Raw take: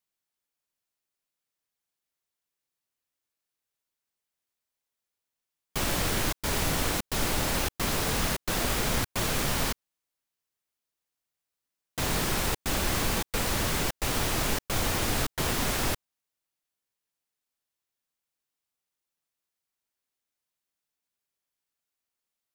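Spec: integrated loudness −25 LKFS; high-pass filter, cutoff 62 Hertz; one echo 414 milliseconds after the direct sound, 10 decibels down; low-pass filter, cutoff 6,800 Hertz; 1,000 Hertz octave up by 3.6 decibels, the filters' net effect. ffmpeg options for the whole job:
ffmpeg -i in.wav -af "highpass=62,lowpass=6800,equalizer=frequency=1000:width_type=o:gain=4.5,aecho=1:1:414:0.316,volume=3.5dB" out.wav

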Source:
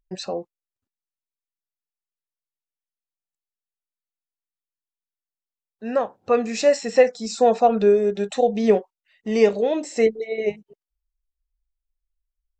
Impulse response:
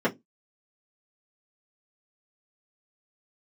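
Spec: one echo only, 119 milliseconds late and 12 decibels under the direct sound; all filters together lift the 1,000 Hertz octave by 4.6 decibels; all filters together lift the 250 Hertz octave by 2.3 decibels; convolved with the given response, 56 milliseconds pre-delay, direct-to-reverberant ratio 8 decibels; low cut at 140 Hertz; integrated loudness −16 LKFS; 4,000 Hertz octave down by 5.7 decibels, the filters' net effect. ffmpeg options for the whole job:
-filter_complex "[0:a]highpass=140,equalizer=frequency=250:width_type=o:gain=3,equalizer=frequency=1000:width_type=o:gain=8,equalizer=frequency=4000:width_type=o:gain=-8,aecho=1:1:119:0.251,asplit=2[link_01][link_02];[1:a]atrim=start_sample=2205,adelay=56[link_03];[link_02][link_03]afir=irnorm=-1:irlink=0,volume=-21.5dB[link_04];[link_01][link_04]amix=inputs=2:normalize=0,volume=-0.5dB"

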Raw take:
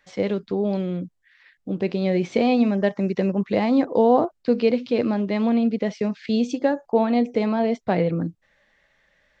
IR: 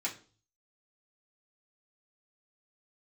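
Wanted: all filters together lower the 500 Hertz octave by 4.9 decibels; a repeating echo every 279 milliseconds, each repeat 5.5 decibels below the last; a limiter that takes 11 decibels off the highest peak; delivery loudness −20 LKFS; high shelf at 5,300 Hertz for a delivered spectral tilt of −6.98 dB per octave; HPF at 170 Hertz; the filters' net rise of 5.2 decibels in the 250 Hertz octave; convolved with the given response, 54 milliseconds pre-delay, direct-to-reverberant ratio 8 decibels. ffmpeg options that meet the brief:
-filter_complex "[0:a]highpass=170,equalizer=frequency=250:width_type=o:gain=9,equalizer=frequency=500:width_type=o:gain=-8.5,highshelf=frequency=5300:gain=6,alimiter=limit=-15.5dB:level=0:latency=1,aecho=1:1:279|558|837|1116|1395|1674|1953:0.531|0.281|0.149|0.079|0.0419|0.0222|0.0118,asplit=2[link_01][link_02];[1:a]atrim=start_sample=2205,adelay=54[link_03];[link_02][link_03]afir=irnorm=-1:irlink=0,volume=-11.5dB[link_04];[link_01][link_04]amix=inputs=2:normalize=0,volume=2.5dB"

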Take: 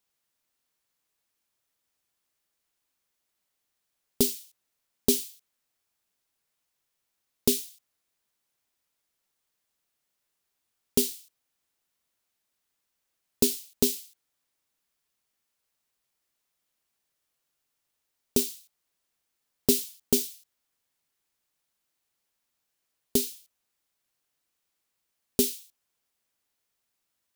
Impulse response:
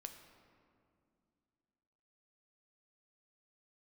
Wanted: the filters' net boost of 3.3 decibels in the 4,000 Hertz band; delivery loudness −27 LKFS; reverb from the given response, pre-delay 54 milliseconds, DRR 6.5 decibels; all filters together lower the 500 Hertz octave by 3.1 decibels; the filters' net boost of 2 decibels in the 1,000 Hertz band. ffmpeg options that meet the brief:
-filter_complex "[0:a]equalizer=frequency=500:width_type=o:gain=-5,equalizer=frequency=1000:width_type=o:gain=4.5,equalizer=frequency=4000:width_type=o:gain=4,asplit=2[link_01][link_02];[1:a]atrim=start_sample=2205,adelay=54[link_03];[link_02][link_03]afir=irnorm=-1:irlink=0,volume=-1.5dB[link_04];[link_01][link_04]amix=inputs=2:normalize=0,volume=-0.5dB"

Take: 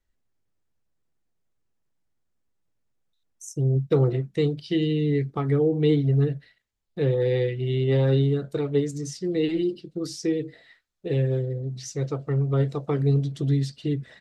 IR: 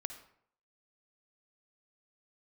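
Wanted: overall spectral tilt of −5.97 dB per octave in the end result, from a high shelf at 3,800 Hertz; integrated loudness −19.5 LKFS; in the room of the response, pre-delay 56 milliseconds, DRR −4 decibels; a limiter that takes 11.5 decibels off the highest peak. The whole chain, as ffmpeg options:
-filter_complex "[0:a]highshelf=frequency=3800:gain=8.5,alimiter=limit=-21.5dB:level=0:latency=1,asplit=2[link_01][link_02];[1:a]atrim=start_sample=2205,adelay=56[link_03];[link_02][link_03]afir=irnorm=-1:irlink=0,volume=5.5dB[link_04];[link_01][link_04]amix=inputs=2:normalize=0,volume=5dB"

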